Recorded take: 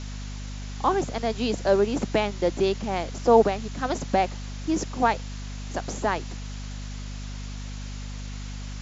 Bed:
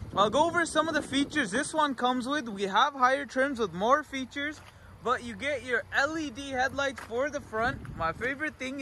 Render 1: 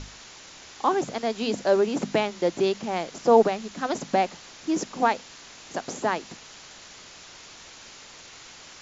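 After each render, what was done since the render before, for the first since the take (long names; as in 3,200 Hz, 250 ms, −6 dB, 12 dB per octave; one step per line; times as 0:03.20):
mains-hum notches 50/100/150/200/250 Hz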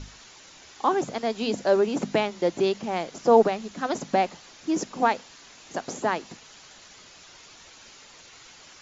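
broadband denoise 6 dB, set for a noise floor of −47 dBFS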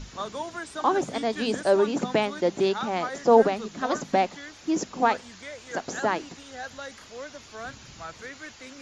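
mix in bed −9.5 dB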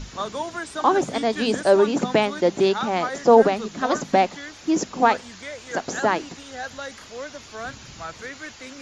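level +4.5 dB
brickwall limiter −3 dBFS, peak gain reduction 2 dB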